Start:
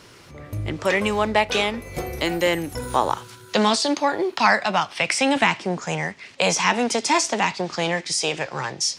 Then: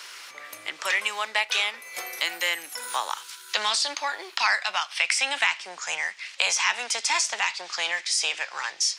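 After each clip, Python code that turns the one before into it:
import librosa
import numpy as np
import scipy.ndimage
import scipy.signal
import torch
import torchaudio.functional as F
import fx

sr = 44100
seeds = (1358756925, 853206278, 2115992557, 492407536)

y = scipy.signal.sosfilt(scipy.signal.butter(2, 1400.0, 'highpass', fs=sr, output='sos'), x)
y = fx.band_squash(y, sr, depth_pct=40)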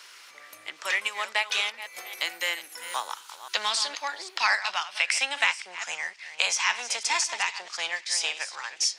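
y = fx.reverse_delay(x, sr, ms=268, wet_db=-9.0)
y = fx.upward_expand(y, sr, threshold_db=-33.0, expansion=1.5)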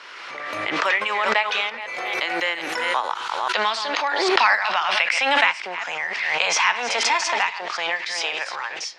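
y = scipy.signal.sosfilt(scipy.signal.butter(2, 4200.0, 'lowpass', fs=sr, output='sos'), x)
y = fx.high_shelf(y, sr, hz=2500.0, db=-11.0)
y = fx.pre_swell(y, sr, db_per_s=26.0)
y = y * 10.0 ** (9.0 / 20.0)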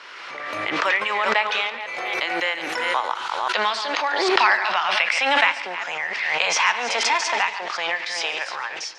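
y = fx.high_shelf(x, sr, hz=9100.0, db=-4.0)
y = fx.echo_feedback(y, sr, ms=143, feedback_pct=48, wet_db=-17)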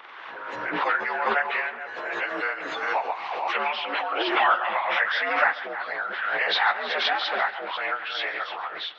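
y = fx.partial_stretch(x, sr, pct=86)
y = fx.hpss(y, sr, part='harmonic', gain_db=-9)
y = y * 10.0 ** (2.0 / 20.0)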